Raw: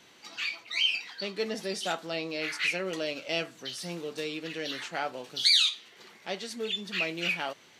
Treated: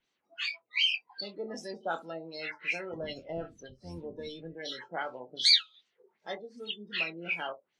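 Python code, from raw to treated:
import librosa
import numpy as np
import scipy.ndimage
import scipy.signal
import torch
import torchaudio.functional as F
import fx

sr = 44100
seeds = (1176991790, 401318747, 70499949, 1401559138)

y = fx.octave_divider(x, sr, octaves=1, level_db=-3.0, at=(2.92, 4.53))
y = fx.hpss(y, sr, part='harmonic', gain_db=-7)
y = fx.room_early_taps(y, sr, ms=(24, 70), db=(-8.0, -18.0))
y = fx.noise_reduce_blind(y, sr, reduce_db=21)
y = fx.filter_lfo_lowpass(y, sr, shape='sine', hz=2.6, low_hz=560.0, high_hz=7700.0, q=1.4)
y = F.gain(torch.from_numpy(y), -1.5).numpy()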